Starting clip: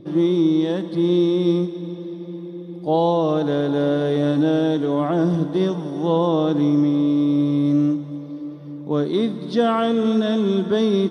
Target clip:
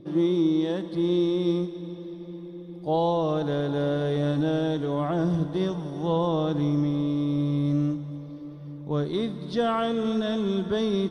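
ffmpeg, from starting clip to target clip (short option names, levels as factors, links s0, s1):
-af "asubboost=boost=7.5:cutoff=87,volume=0.596"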